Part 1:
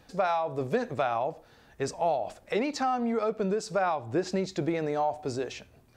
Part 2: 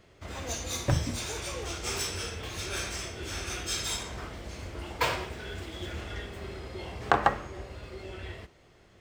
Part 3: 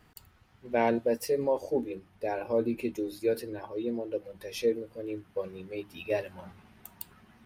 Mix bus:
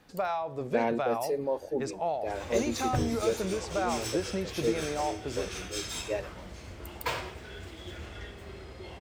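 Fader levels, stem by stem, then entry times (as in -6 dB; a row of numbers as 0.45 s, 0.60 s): -4.0 dB, -4.5 dB, -3.0 dB; 0.00 s, 2.05 s, 0.00 s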